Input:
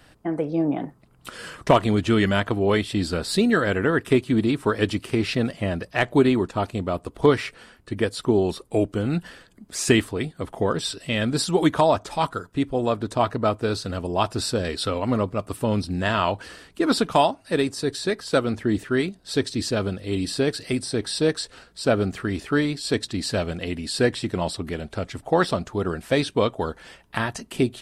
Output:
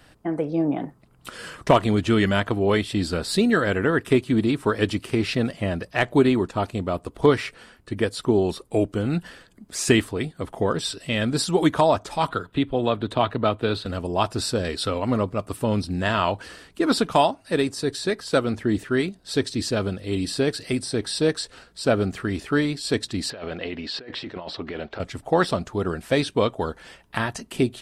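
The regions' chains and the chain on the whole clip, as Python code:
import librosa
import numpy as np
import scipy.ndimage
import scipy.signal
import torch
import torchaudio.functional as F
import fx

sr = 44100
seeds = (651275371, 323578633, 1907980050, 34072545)

y = fx.chain(x, sr, fx.high_shelf_res(hz=4500.0, db=-7.5, q=3.0),
    fx.band_squash(depth_pct=40), at=(12.28, 13.86))
y = fx.chain(y, sr, fx.lowpass(hz=5300.0, slope=24),
    fx.bass_treble(bass_db=-12, treble_db=-8),
    fx.over_compress(threshold_db=-33.0, ratio=-1.0), at=(23.3, 25.0))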